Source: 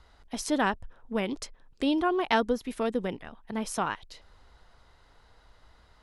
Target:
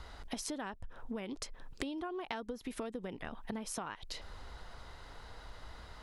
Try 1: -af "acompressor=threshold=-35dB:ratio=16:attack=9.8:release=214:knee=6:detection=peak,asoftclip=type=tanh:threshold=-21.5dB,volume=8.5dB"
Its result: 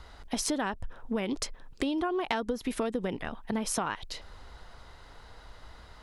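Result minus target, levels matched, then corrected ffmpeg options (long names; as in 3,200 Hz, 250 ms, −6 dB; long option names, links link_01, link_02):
downward compressor: peak gain reduction −10.5 dB
-af "acompressor=threshold=-46dB:ratio=16:attack=9.8:release=214:knee=6:detection=peak,asoftclip=type=tanh:threshold=-21.5dB,volume=8.5dB"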